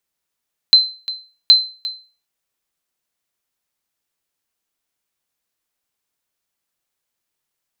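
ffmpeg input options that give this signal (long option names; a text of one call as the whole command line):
ffmpeg -f lavfi -i "aevalsrc='0.841*(sin(2*PI*4080*mod(t,0.77))*exp(-6.91*mod(t,0.77)/0.36)+0.15*sin(2*PI*4080*max(mod(t,0.77)-0.35,0))*exp(-6.91*max(mod(t,0.77)-0.35,0)/0.36))':duration=1.54:sample_rate=44100" out.wav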